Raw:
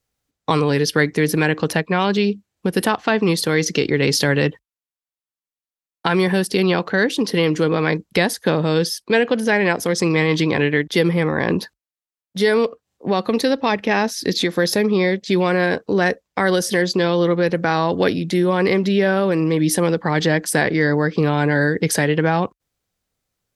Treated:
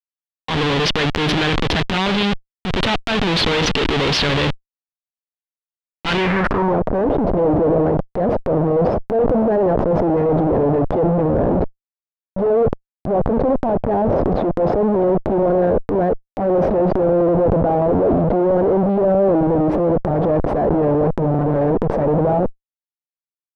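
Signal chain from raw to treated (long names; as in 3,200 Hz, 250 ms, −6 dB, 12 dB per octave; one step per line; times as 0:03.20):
comparator with hysteresis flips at −27 dBFS
low-pass filter sweep 3,400 Hz → 630 Hz, 0:06.13–0:06.82
transient designer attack −6 dB, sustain +7 dB
level +1.5 dB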